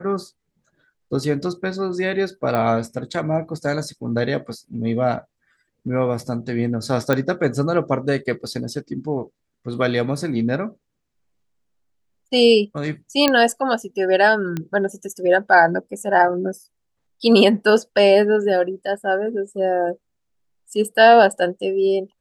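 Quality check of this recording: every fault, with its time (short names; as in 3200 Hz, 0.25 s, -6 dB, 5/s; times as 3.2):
2.55 pop -11 dBFS
7.13 pop -7 dBFS
13.28 pop -2 dBFS
14.57 pop -13 dBFS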